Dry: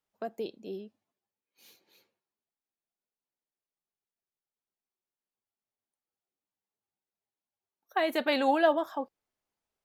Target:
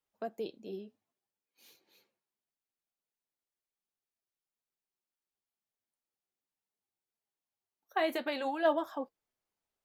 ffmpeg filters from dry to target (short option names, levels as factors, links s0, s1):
-filter_complex "[0:a]asplit=3[s0][s1][s2];[s0]afade=t=out:st=8.16:d=0.02[s3];[s1]acompressor=threshold=0.0355:ratio=6,afade=t=in:st=8.16:d=0.02,afade=t=out:st=8.64:d=0.02[s4];[s2]afade=t=in:st=8.64:d=0.02[s5];[s3][s4][s5]amix=inputs=3:normalize=0,flanger=delay=1.9:depth=9:regen=-64:speed=0.57:shape=triangular,volume=1.19"